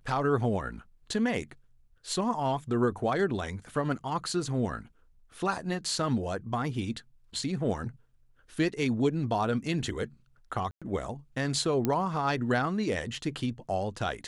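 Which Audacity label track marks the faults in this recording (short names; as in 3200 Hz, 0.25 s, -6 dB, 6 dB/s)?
10.710000	10.820000	gap 0.106 s
11.850000	11.850000	pop -14 dBFS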